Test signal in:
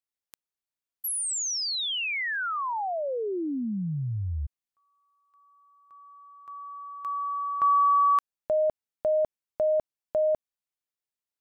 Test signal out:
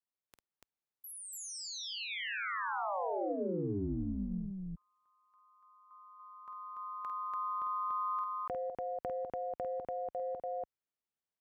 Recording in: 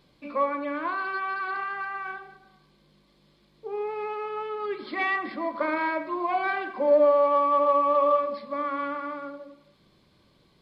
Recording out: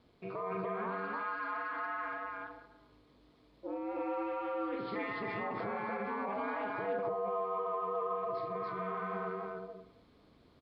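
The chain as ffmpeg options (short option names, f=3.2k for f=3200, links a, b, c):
-filter_complex "[0:a]acompressor=threshold=-33dB:ratio=6:attack=1.8:release=37:knee=1:detection=peak,highshelf=f=2.7k:g=-11,aeval=exprs='val(0)*sin(2*PI*98*n/s)':c=same,highpass=f=44:p=1,asplit=2[a][b];[b]aecho=0:1:49.56|288.6:0.447|0.891[c];[a][c]amix=inputs=2:normalize=0"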